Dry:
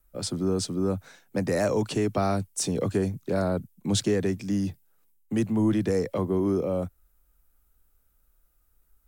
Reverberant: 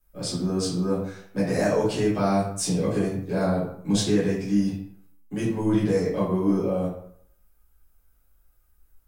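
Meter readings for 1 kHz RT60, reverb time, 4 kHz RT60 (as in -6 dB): 0.65 s, 0.65 s, 0.45 s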